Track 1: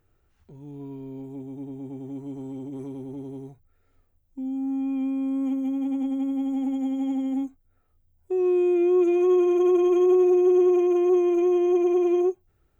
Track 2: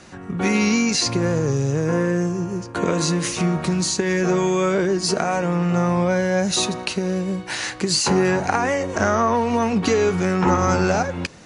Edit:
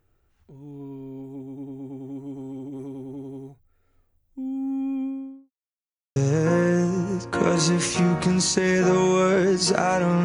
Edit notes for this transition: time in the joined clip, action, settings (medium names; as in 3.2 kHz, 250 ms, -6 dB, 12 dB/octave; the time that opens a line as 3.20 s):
track 1
4.87–5.51 s: studio fade out
5.51–6.16 s: mute
6.16 s: go over to track 2 from 1.58 s